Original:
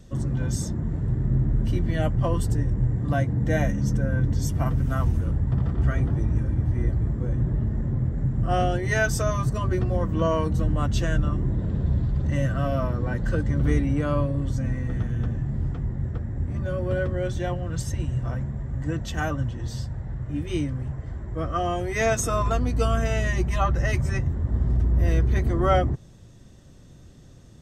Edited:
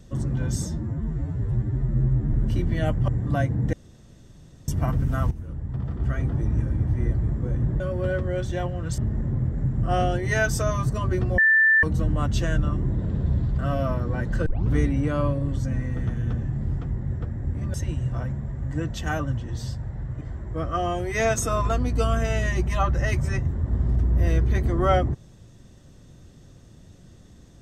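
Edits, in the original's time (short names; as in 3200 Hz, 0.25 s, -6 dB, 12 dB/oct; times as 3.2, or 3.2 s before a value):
0.67–1.5 stretch 2×
2.25–2.86 cut
3.51–4.46 room tone
5.09–6.34 fade in, from -13.5 dB
9.98–10.43 bleep 1770 Hz -14 dBFS
12.19–12.52 cut
13.39 tape start 0.25 s
16.67–17.85 move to 7.58
20.32–21.02 cut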